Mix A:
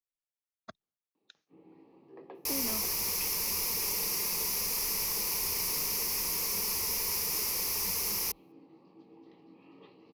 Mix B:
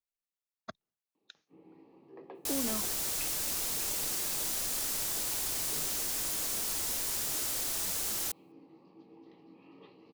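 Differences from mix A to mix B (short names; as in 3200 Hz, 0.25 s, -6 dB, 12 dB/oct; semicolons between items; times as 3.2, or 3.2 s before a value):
speech +3.5 dB; second sound: remove ripple EQ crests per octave 0.83, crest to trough 13 dB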